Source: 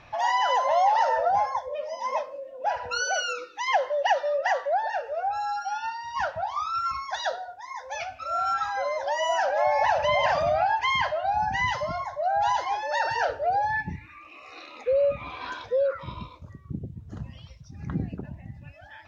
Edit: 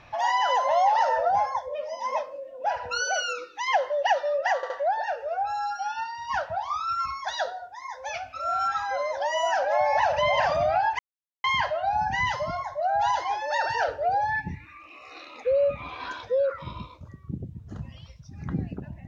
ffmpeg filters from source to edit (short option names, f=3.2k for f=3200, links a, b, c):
-filter_complex "[0:a]asplit=4[a][b][c][d];[a]atrim=end=4.632[e];[b]atrim=start=4.558:end=4.632[f];[c]atrim=start=4.558:end=10.85,asetpts=PTS-STARTPTS,afade=t=out:st=6.288:d=0.004:c=hsin,apad=pad_dur=0.45[g];[d]atrim=start=10.85,asetpts=PTS-STARTPTS,afade=t=in:d=0.004:c=hsin[h];[e][f]acrossfade=d=0.004:c1=hsin:c2=hsin[i];[g][h]concat=n=2:v=0:a=1[j];[i][j]acrossfade=d=0.004:c1=hsin:c2=hsin"